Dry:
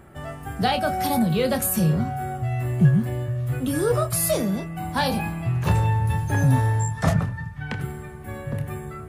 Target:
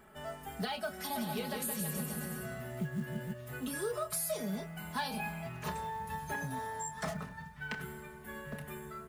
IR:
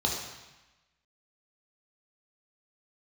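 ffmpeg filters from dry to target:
-filter_complex "[0:a]lowshelf=f=410:g=-10,asplit=3[s0][s1][s2];[s0]afade=t=out:st=1.14:d=0.02[s3];[s1]aecho=1:1:170|323|460.7|584.6|696.2:0.631|0.398|0.251|0.158|0.1,afade=t=in:st=1.14:d=0.02,afade=t=out:st=3.32:d=0.02[s4];[s2]afade=t=in:st=3.32:d=0.02[s5];[s3][s4][s5]amix=inputs=3:normalize=0,acompressor=threshold=0.0355:ratio=6,aecho=1:1:4.7:0.89,acrusher=bits=7:mode=log:mix=0:aa=0.000001,volume=0.447"

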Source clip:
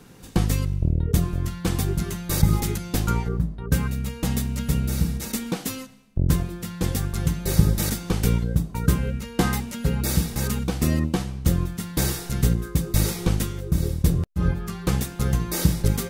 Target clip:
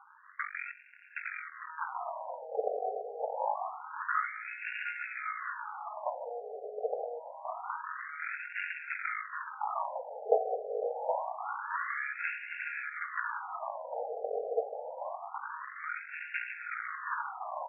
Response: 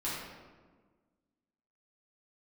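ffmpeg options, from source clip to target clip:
-af "aresample=16000,aeval=exprs='max(val(0),0)':c=same,aresample=44100,asetrate=40131,aresample=44100,aecho=1:1:770|1386|1879|2273|2588:0.631|0.398|0.251|0.158|0.1,afftfilt=real='re*between(b*sr/1024,560*pow(2000/560,0.5+0.5*sin(2*PI*0.26*pts/sr))/1.41,560*pow(2000/560,0.5+0.5*sin(2*PI*0.26*pts/sr))*1.41)':imag='im*between(b*sr/1024,560*pow(2000/560,0.5+0.5*sin(2*PI*0.26*pts/sr))/1.41,560*pow(2000/560,0.5+0.5*sin(2*PI*0.26*pts/sr))*1.41)':win_size=1024:overlap=0.75,volume=2.11"

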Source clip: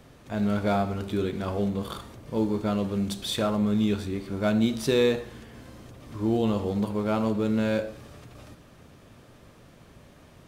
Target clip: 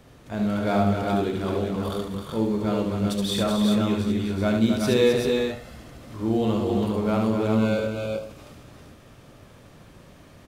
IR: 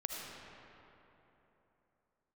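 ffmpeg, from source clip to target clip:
-filter_complex "[0:a]asettb=1/sr,asplit=3[s0][s1][s2];[s0]atrim=end=1.054[s3];[s1]atrim=start=1.05:end=1.76,asetpts=PTS-STARTPTS,afade=t=in:d=0.004:c=qsin,afade=t=out:st=0.706:d=0.004:c=qsin,bandreject=f=50:t=h:w=6,bandreject=f=100:t=h:w=6,bandreject=f=150:t=h:w=6,bandreject=f=200:t=h:w=6[s4];[s2]atrim=start=1.756[s5];[s3][s4]acrossfade=d=0.004:c1=hsin:c2=qsin[s6];[s6][s5]acrossfade=d=0.004:c1=qsin:c2=hsin,asettb=1/sr,asplit=3[s7][s8][s9];[s7]atrim=end=5.134[s10];[s8]atrim=start=5.13:end=5.76,asetpts=PTS-STARTPTS,afade=t=in:d=0.004:c=qsin,afade=t=out:st=0.626:d=0.004:c=qsin,aecho=1:1:1.5:0.65,atrim=end_sample=27783[s11];[s9]atrim=start=5.756[s12];[s10][s11]acrossfade=d=0.004:c1=hsin:c2=qsin[s13];[s13][s12]acrossfade=d=0.004:c1=qsin:c2=hsin,asettb=1/sr,asplit=3[s14][s15][s16];[s14]atrim=end=7.524[s17];[s15]atrim=start=7.52:end=8.25,asetpts=PTS-STARTPTS,afade=t=in:d=0.004:c=qsin,afade=t=out:st=0.726:d=0.004:c=qsin,asuperstop=centerf=1800:order=12:qfactor=3.7[s18];[s16]atrim=start=8.246[s19];[s17][s18]acrossfade=d=0.004:c1=hsin:c2=qsin[s20];[s20][s19]acrossfade=d=0.004:c1=qsin:c2=hsin,aecho=1:1:72|262|369|389:0.631|0.447|0.422|0.531"

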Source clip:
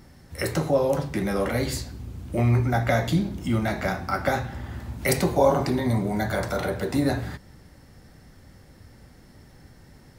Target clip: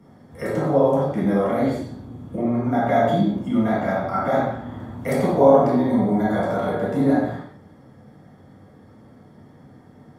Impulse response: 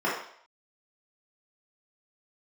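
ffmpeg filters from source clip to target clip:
-filter_complex "[0:a]asettb=1/sr,asplit=3[s0][s1][s2];[s0]atrim=end=1.684[s3];[s1]atrim=start=1.68:end=2.66,asetpts=PTS-STARTPTS,afade=t=in:d=0.004:c=qsin,afade=t=out:st=0.976:d=0.004:c=qsin,acrossover=split=480[s4][s5];[s5]acompressor=threshold=0.0141:ratio=4[s6];[s4][s6]amix=inputs=2:normalize=0[s7];[s2]atrim=start=2.656[s8];[s3][s7]acrossfade=d=0.004:c1=hsin:c2=qsin[s9];[s9][s8]acrossfade=d=0.004:c1=qsin:c2=hsin,acrossover=split=190|1100|2200[s10][s11][s12][s13];[s10]alimiter=level_in=1.41:limit=0.0631:level=0:latency=1,volume=0.708[s14];[s14][s11][s12][s13]amix=inputs=4:normalize=0[s15];[1:a]atrim=start_sample=2205,atrim=end_sample=6174,asetrate=28224,aresample=44100[s16];[s15][s16]afir=irnorm=-1:irlink=0,volume=0.224"

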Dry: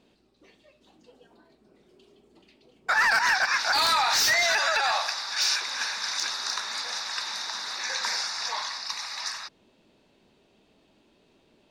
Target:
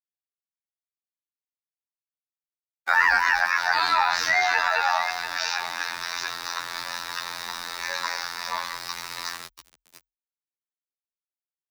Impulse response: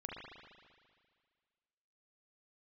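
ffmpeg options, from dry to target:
-filter_complex "[0:a]highshelf=f=4900:g=-8,aecho=1:1:689|1378:0.299|0.0508,asplit=2[s0][s1];[1:a]atrim=start_sample=2205,asetrate=70560,aresample=44100[s2];[s1][s2]afir=irnorm=-1:irlink=0,volume=0.211[s3];[s0][s3]amix=inputs=2:normalize=0,aeval=exprs='val(0)*gte(abs(val(0)),0.0168)':c=same,afftfilt=real='hypot(re,im)*cos(PI*b)':imag='0':win_size=2048:overlap=0.75,acontrast=70,afreqshift=40,adynamicequalizer=threshold=0.02:dfrequency=3100:dqfactor=0.7:tfrequency=3100:tqfactor=0.7:attack=5:release=100:ratio=0.375:range=3:mode=cutabove:tftype=highshelf"

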